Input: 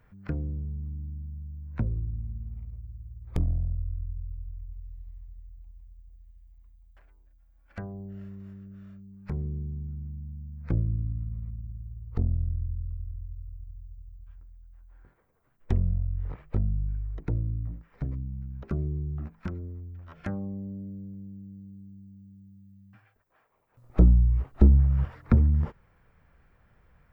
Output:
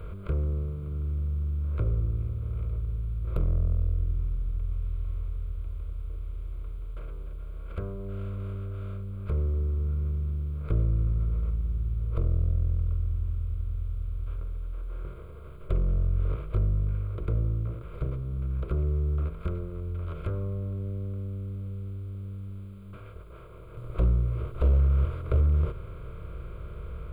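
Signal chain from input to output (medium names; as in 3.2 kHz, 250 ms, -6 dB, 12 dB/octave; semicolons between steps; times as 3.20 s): spectral levelling over time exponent 0.4; flange 0.26 Hz, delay 4.2 ms, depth 6.3 ms, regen -68%; wavefolder -12.5 dBFS; static phaser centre 1.2 kHz, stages 8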